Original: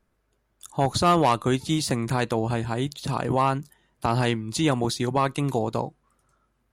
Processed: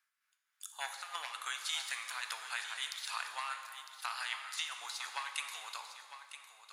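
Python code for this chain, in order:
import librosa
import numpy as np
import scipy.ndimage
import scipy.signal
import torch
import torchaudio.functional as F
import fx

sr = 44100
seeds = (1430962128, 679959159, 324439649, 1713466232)

y = scipy.signal.sosfilt(scipy.signal.butter(4, 1400.0, 'highpass', fs=sr, output='sos'), x)
y = fx.over_compress(y, sr, threshold_db=-34.0, ratio=-0.5)
y = y * (1.0 - 0.55 / 2.0 + 0.55 / 2.0 * np.cos(2.0 * np.pi * 3.5 * (np.arange(len(y)) / sr)))
y = y + 10.0 ** (-11.5 / 20.0) * np.pad(y, (int(955 * sr / 1000.0), 0))[:len(y)]
y = fx.rev_plate(y, sr, seeds[0], rt60_s=2.2, hf_ratio=0.8, predelay_ms=0, drr_db=5.0)
y = y * librosa.db_to_amplitude(-2.5)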